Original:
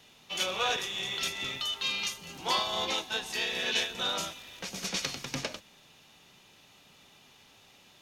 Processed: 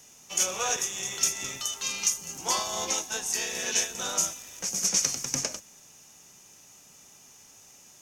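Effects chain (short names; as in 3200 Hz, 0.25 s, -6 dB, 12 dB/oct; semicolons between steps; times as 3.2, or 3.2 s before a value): resonant high shelf 4900 Hz +9 dB, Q 3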